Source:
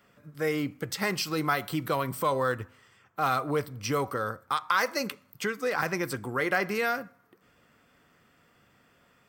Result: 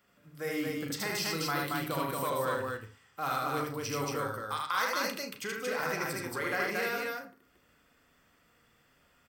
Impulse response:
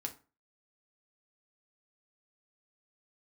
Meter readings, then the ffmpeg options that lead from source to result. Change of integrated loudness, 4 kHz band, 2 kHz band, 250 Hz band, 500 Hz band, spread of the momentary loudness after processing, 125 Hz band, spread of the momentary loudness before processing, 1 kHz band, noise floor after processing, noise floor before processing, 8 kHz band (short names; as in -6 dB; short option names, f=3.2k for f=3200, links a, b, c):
-3.5 dB, -1.0 dB, -3.0 dB, -4.5 dB, -4.5 dB, 7 LU, -4.5 dB, 7 LU, -4.0 dB, -67 dBFS, -64 dBFS, 0.0 dB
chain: -filter_complex "[0:a]highshelf=f=3.9k:g=6,asplit=2[a][b];[b]aecho=0:1:75.8|227.4:0.794|0.794[c];[a][c]amix=inputs=2:normalize=0,asubboost=boost=3.5:cutoff=62,asplit=2[d][e];[1:a]atrim=start_sample=2205,lowpass=6.5k,adelay=36[f];[e][f]afir=irnorm=-1:irlink=0,volume=-5.5dB[g];[d][g]amix=inputs=2:normalize=0,acrusher=bits=9:mode=log:mix=0:aa=0.000001,volume=-8.5dB"